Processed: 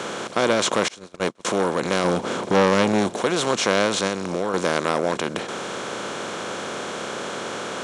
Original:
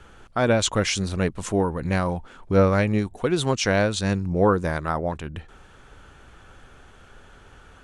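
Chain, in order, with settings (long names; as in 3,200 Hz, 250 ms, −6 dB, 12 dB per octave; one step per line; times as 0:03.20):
compressor on every frequency bin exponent 0.4
Bessel high-pass filter 220 Hz, order 4
0:00.88–0:01.45: noise gate −17 dBFS, range −32 dB
0:02.04–0:03.10: low-shelf EQ 490 Hz +7.5 dB
0:04.06–0:04.54: downward compressor, threshold −18 dBFS, peak gain reduction 7.5 dB
saturating transformer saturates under 960 Hz
level −2 dB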